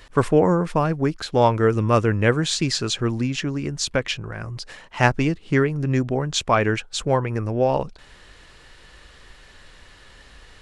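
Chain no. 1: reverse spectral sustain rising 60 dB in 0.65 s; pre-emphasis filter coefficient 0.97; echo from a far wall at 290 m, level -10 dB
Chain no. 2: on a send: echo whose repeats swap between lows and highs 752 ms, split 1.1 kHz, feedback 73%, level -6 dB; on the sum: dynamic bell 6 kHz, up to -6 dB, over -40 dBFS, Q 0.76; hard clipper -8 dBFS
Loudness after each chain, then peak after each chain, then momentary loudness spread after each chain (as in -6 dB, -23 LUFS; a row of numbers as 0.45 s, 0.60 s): -31.0 LUFS, -22.0 LUFS; -7.5 dBFS, -8.0 dBFS; 22 LU, 14 LU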